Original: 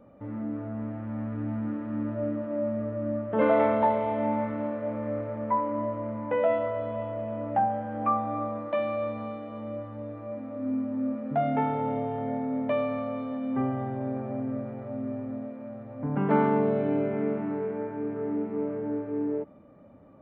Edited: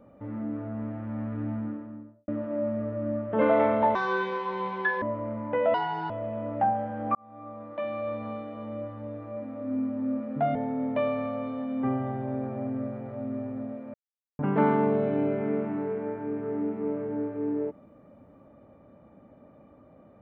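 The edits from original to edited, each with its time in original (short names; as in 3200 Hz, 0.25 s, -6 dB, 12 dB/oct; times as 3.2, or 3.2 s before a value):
1.41–2.28 studio fade out
3.95–5.8 speed 173%
6.52–7.05 speed 147%
8.1–9.25 fade in
11.5–12.28 cut
15.67–16.12 mute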